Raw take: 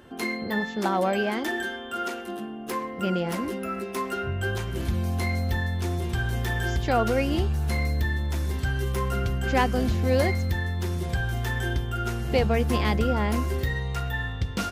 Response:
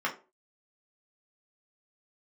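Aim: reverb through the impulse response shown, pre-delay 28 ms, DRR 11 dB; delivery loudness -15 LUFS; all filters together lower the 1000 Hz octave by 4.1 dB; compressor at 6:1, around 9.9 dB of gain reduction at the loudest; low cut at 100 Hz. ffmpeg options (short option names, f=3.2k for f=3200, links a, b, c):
-filter_complex "[0:a]highpass=100,equalizer=f=1k:t=o:g=-6,acompressor=threshold=-30dB:ratio=6,asplit=2[a][b];[1:a]atrim=start_sample=2205,adelay=28[c];[b][c]afir=irnorm=-1:irlink=0,volume=-20dB[d];[a][d]amix=inputs=2:normalize=0,volume=19.5dB"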